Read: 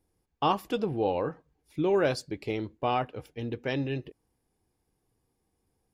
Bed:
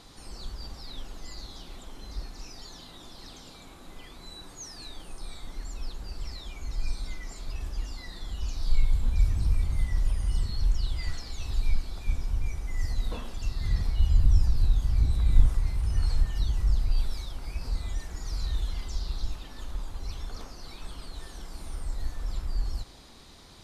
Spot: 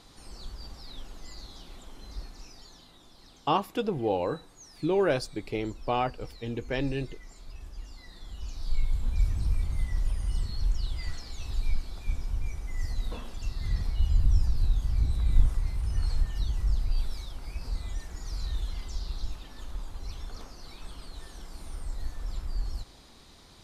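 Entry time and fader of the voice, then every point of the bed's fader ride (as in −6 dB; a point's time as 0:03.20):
3.05 s, 0.0 dB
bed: 0:02.21 −3 dB
0:03.05 −9 dB
0:07.72 −9 dB
0:09.21 −2.5 dB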